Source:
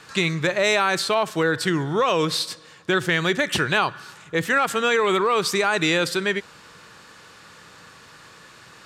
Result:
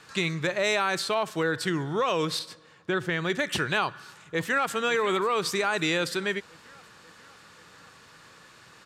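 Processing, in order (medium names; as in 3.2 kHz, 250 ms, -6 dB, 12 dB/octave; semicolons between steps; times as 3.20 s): 2.39–3.30 s: treble shelf 3.1 kHz -9 dB; 3.85–4.75 s: echo throw 540 ms, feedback 65%, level -16.5 dB; trim -5.5 dB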